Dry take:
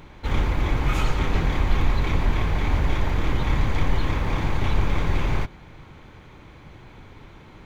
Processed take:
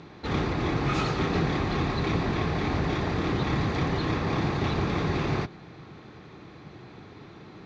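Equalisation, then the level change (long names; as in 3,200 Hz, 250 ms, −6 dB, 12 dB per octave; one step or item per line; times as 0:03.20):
loudspeaker in its box 160–5,300 Hz, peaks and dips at 250 Hz −4 dB, 550 Hz −7 dB, 940 Hz −9 dB, 1,500 Hz −6 dB, 2,200 Hz −8 dB, 3,100 Hz −9 dB
+5.5 dB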